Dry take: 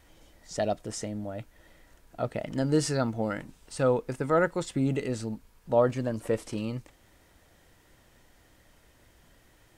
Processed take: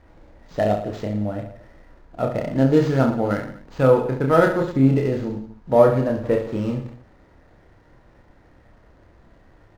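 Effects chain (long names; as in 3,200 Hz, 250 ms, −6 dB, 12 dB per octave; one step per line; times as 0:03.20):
running median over 15 samples
reverse bouncing-ball delay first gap 30 ms, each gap 1.25×, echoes 5
linearly interpolated sample-rate reduction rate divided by 4×
level +7 dB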